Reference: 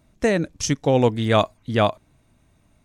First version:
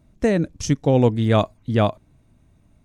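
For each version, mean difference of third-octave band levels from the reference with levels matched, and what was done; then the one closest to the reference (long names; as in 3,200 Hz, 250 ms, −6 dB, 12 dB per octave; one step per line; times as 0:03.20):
3.0 dB: low-shelf EQ 480 Hz +9 dB
level −4.5 dB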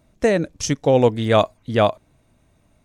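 1.5 dB: parametric band 540 Hz +4 dB 0.91 octaves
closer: second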